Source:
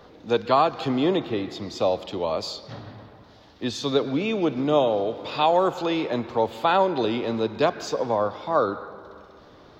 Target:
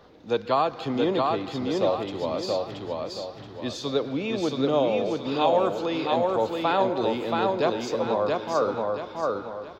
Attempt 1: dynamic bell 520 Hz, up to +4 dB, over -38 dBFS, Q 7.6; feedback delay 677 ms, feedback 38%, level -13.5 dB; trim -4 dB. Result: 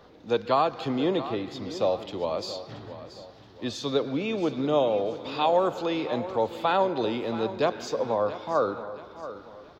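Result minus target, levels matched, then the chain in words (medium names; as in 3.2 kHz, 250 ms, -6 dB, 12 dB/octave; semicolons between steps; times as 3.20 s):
echo-to-direct -11 dB
dynamic bell 520 Hz, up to +4 dB, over -38 dBFS, Q 7.6; feedback delay 677 ms, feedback 38%, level -2.5 dB; trim -4 dB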